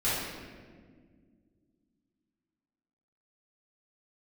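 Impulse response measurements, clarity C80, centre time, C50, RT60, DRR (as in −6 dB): 1.0 dB, 103 ms, −2.0 dB, 1.8 s, −12.5 dB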